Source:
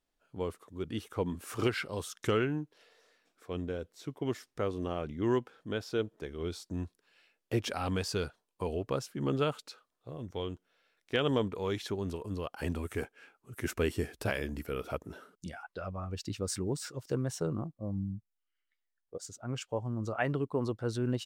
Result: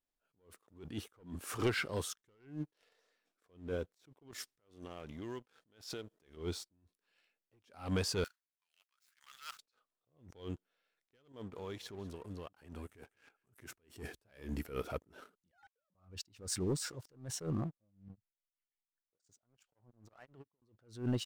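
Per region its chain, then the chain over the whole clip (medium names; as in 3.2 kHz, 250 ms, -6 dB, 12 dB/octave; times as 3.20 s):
4.31–6.37 s: compression, threshold -43 dBFS + treble shelf 2.1 kHz +8.5 dB
8.24–9.59 s: median filter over 15 samples + inverse Chebyshev high-pass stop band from 230 Hz, stop band 80 dB + tilt EQ +3 dB/octave
11.32–13.96 s: compression 2.5:1, threshold -47 dBFS + delay 197 ms -22 dB
15.51–15.95 s: formants replaced by sine waves + compression, threshold -47 dBFS
18.08–20.62 s: compression 5:1, threshold -46 dBFS + tremolo of two beating tones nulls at 5.7 Hz
whole clip: waveshaping leveller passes 2; attacks held to a fixed rise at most 150 dB/s; trim -6.5 dB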